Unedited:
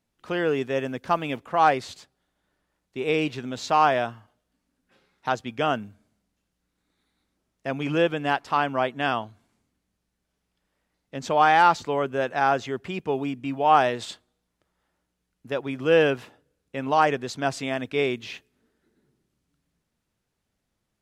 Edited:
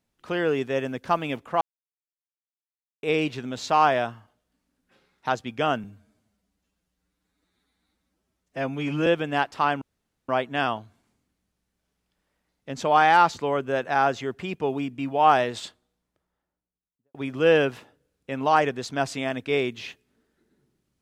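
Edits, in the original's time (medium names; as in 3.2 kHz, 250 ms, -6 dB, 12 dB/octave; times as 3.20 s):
1.61–3.03 s: mute
5.84–7.99 s: stretch 1.5×
8.74 s: insert room tone 0.47 s
14.09–15.60 s: studio fade out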